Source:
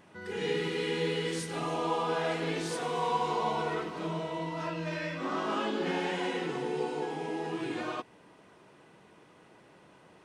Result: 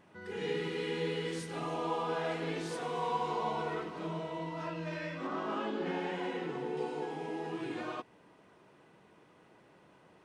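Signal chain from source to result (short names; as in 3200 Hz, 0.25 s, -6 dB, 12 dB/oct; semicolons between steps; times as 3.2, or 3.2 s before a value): high shelf 3700 Hz -5 dB, from 5.27 s -11.5 dB, from 6.77 s -4.5 dB; gain -3.5 dB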